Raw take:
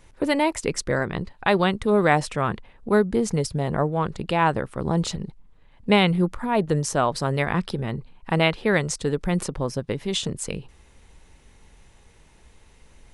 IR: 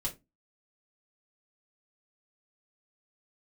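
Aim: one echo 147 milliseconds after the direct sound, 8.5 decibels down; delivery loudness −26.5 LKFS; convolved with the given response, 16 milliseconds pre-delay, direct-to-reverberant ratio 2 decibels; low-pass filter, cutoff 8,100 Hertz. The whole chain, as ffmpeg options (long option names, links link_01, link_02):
-filter_complex "[0:a]lowpass=8100,aecho=1:1:147:0.376,asplit=2[link_01][link_02];[1:a]atrim=start_sample=2205,adelay=16[link_03];[link_02][link_03]afir=irnorm=-1:irlink=0,volume=-3.5dB[link_04];[link_01][link_04]amix=inputs=2:normalize=0,volume=-6.5dB"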